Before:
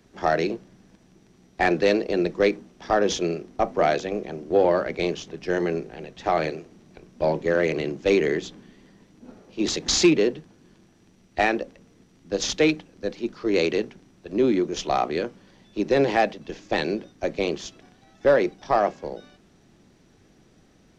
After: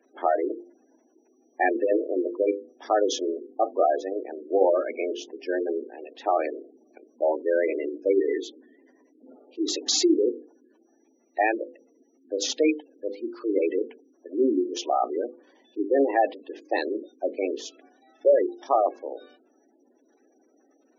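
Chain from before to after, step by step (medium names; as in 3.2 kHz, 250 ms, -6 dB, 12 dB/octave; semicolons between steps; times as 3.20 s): elliptic high-pass 260 Hz, stop band 40 dB; spectral gate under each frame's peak -15 dB strong; hum notches 50/100/150/200/250/300/350/400/450/500 Hz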